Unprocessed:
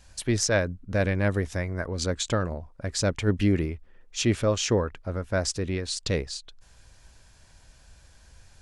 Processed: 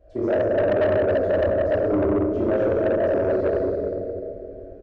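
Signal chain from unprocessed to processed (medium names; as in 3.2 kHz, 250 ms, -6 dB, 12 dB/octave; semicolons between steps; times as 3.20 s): in parallel at +2 dB: compression 16:1, threshold -31 dBFS, peak gain reduction 14.5 dB; on the sum: resonant low-pass 650 Hz, resonance Q 8.1; bass shelf 86 Hz -7.5 dB; static phaser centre 370 Hz, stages 4; peak limiter -12.5 dBFS, peak gain reduction 8 dB; time stretch by phase-locked vocoder 0.56×; on a send: delay 182 ms -7.5 dB; on the sum: plate-style reverb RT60 3.2 s, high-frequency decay 0.5×, DRR -9.5 dB; saturation -12 dBFS, distortion -12 dB; trim -3.5 dB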